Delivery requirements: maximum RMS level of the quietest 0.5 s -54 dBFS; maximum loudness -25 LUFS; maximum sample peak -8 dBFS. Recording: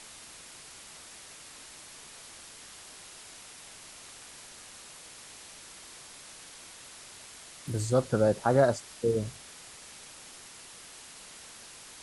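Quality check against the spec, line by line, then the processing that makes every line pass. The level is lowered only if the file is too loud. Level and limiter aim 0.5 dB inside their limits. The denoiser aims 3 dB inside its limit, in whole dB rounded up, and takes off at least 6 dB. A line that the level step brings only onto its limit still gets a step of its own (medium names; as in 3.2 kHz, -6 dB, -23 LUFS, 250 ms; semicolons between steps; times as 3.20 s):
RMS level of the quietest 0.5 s -49 dBFS: fail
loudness -28.0 LUFS: pass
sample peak -11.5 dBFS: pass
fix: noise reduction 8 dB, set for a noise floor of -49 dBFS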